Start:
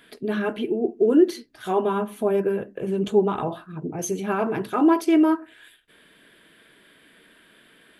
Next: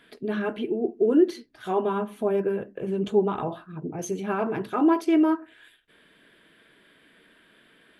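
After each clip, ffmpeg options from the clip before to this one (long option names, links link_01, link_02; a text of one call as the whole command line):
ffmpeg -i in.wav -af "highshelf=frequency=7000:gain=-9,volume=-2.5dB" out.wav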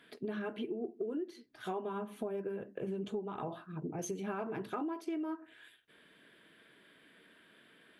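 ffmpeg -i in.wav -af "highpass=80,acompressor=threshold=-30dB:ratio=16,volume=-4.5dB" out.wav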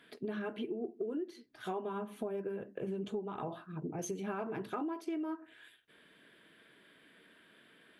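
ffmpeg -i in.wav -af anull out.wav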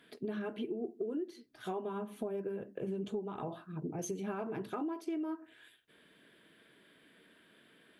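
ffmpeg -i in.wav -af "equalizer=frequency=1600:width=0.53:gain=-3.5,volume=1dB" out.wav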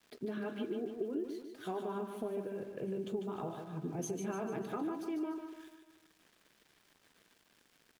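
ffmpeg -i in.wav -af "aeval=exprs='val(0)*gte(abs(val(0)),0.00126)':channel_layout=same,aecho=1:1:148|296|444|592|740|888:0.447|0.219|0.107|0.0526|0.0258|0.0126,volume=-1dB" out.wav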